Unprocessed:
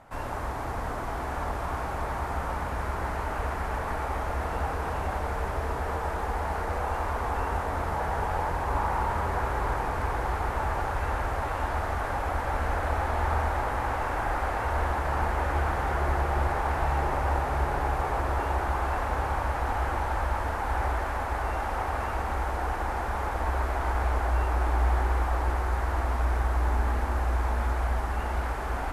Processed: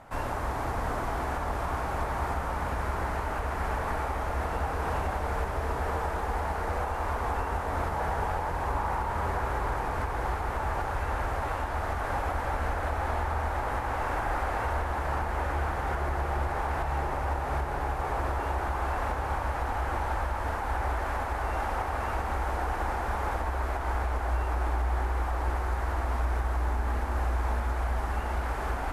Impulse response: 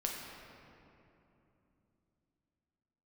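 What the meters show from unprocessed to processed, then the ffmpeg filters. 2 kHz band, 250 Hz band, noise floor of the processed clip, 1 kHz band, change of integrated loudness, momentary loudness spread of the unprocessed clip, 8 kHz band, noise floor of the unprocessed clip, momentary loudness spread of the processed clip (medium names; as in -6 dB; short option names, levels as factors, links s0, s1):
-1.5 dB, -1.5 dB, -32 dBFS, -1.5 dB, -1.5 dB, 4 LU, -1.0 dB, -32 dBFS, 2 LU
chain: -af "alimiter=limit=0.075:level=0:latency=1:release=440,volume=1.33"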